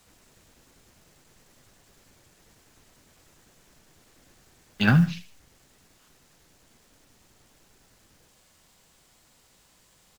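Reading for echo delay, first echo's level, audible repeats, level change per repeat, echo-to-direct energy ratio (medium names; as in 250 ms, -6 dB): 78 ms, -15.0 dB, 2, -8.5 dB, -14.5 dB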